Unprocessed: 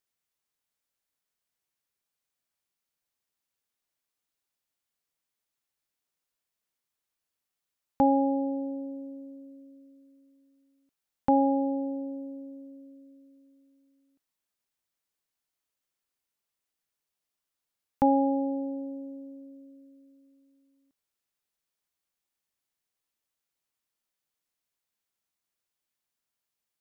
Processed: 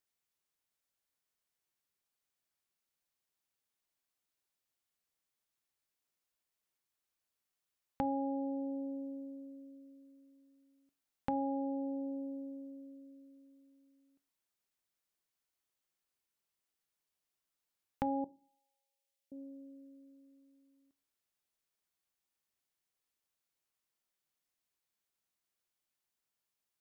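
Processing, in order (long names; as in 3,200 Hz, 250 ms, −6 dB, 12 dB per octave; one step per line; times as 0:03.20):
0:18.24–0:19.32: inverse Chebyshev high-pass filter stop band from 340 Hz, stop band 80 dB
downward compressor 2.5 to 1, threshold −35 dBFS, peak gain reduction 11.5 dB
on a send: convolution reverb RT60 0.35 s, pre-delay 3 ms, DRR 17 dB
on the sum: level −2.5 dB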